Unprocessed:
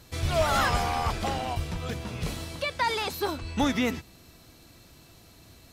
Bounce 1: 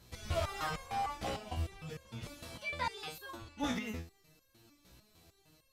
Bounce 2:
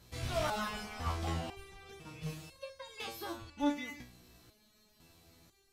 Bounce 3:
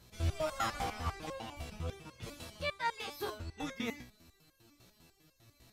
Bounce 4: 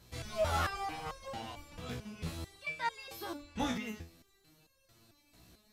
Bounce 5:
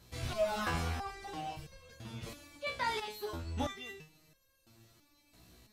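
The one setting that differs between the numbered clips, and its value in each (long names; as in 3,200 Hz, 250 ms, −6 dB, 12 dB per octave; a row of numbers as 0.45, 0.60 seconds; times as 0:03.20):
step-sequenced resonator, speed: 6.6, 2, 10, 4.5, 3 Hertz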